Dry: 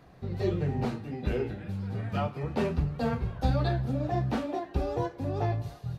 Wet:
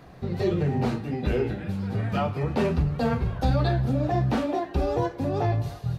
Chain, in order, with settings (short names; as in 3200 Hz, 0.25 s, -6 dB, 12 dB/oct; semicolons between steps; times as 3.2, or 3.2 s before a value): notches 50/100 Hz; in parallel at +2 dB: limiter -25.5 dBFS, peak gain reduction 11 dB